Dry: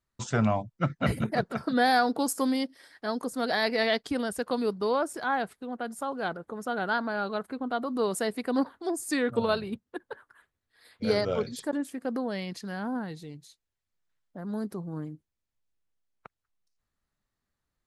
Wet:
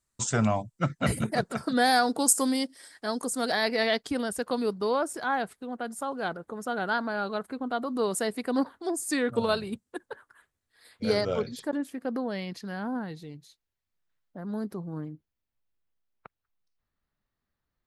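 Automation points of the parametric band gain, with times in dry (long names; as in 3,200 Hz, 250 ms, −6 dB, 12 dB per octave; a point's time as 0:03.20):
parametric band 8,200 Hz 0.94 octaves
+14.5 dB
from 0:03.52 +4 dB
from 0:09.38 +12 dB
from 0:10.06 +5.5 dB
from 0:11.41 −5 dB
from 0:15.01 −13 dB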